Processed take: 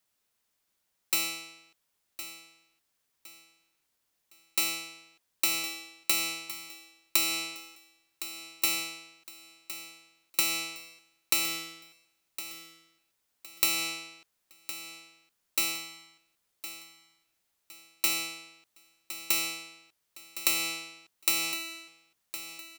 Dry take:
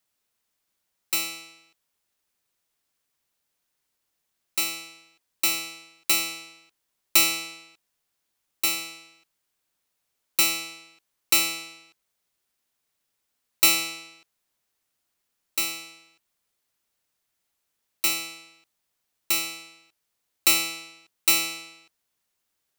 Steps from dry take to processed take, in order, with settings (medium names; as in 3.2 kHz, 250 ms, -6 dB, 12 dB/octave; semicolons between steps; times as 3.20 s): compression 12:1, threshold -22 dBFS, peak gain reduction 10 dB; on a send: feedback delay 1062 ms, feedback 33%, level -13 dB